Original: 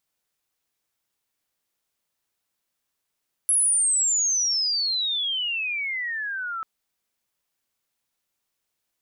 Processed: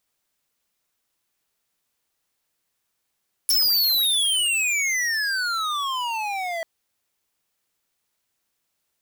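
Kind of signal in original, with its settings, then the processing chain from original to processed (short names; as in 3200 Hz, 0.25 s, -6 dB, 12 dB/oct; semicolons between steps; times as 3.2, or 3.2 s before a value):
chirp logarithmic 11000 Hz -> 1300 Hz -17 dBFS -> -28 dBFS 3.14 s
cycle switcher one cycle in 2, inverted; in parallel at -5.5 dB: soft clip -31.5 dBFS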